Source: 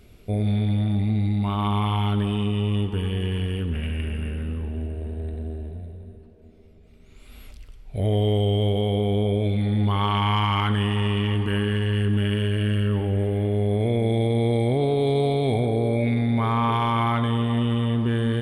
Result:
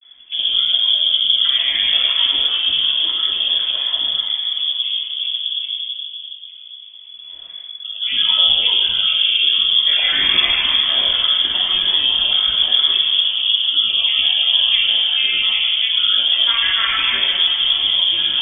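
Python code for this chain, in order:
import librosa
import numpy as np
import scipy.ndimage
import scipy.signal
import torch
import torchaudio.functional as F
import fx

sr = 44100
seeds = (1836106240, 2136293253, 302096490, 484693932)

y = fx.granulator(x, sr, seeds[0], grain_ms=100.0, per_s=20.0, spray_ms=100.0, spread_st=12)
y = fx.room_shoebox(y, sr, seeds[1], volume_m3=2400.0, walls='mixed', distance_m=3.1)
y = fx.freq_invert(y, sr, carrier_hz=3400)
y = F.gain(torch.from_numpy(y), -1.0).numpy()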